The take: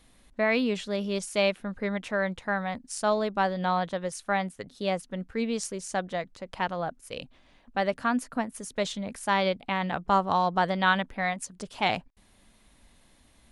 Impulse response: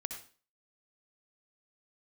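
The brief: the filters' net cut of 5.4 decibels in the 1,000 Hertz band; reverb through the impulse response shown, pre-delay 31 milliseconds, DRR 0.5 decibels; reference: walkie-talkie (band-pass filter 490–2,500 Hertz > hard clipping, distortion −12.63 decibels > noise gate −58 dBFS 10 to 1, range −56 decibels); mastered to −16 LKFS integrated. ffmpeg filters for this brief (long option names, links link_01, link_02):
-filter_complex "[0:a]equalizer=frequency=1000:width_type=o:gain=-6.5,asplit=2[link_01][link_02];[1:a]atrim=start_sample=2205,adelay=31[link_03];[link_02][link_03]afir=irnorm=-1:irlink=0,volume=0dB[link_04];[link_01][link_04]amix=inputs=2:normalize=0,highpass=490,lowpass=2500,asoftclip=type=hard:threshold=-23dB,agate=range=-56dB:threshold=-58dB:ratio=10,volume=16.5dB"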